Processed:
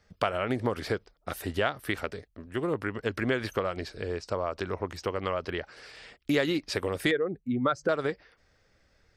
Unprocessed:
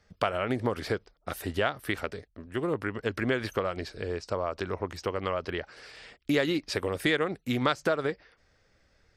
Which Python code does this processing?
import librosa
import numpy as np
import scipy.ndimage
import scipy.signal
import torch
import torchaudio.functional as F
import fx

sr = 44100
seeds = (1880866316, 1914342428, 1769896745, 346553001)

y = fx.spec_expand(x, sr, power=1.9, at=(7.11, 7.89))